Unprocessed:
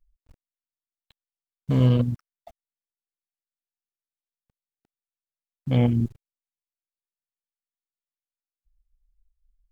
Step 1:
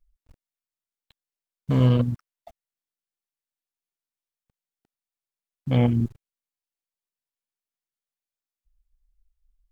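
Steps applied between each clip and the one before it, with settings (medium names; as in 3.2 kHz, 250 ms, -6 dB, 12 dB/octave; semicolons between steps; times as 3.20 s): dynamic bell 1.2 kHz, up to +4 dB, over -44 dBFS, Q 0.94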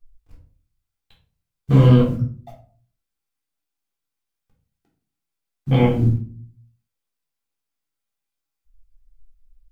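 simulated room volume 330 m³, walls furnished, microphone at 3.7 m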